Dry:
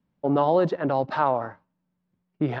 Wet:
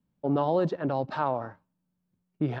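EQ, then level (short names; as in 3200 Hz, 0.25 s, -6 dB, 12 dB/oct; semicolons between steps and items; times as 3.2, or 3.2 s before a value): low shelf 340 Hz +6.5 dB; high shelf 4000 Hz +6.5 dB; notch 2000 Hz, Q 21; -7.0 dB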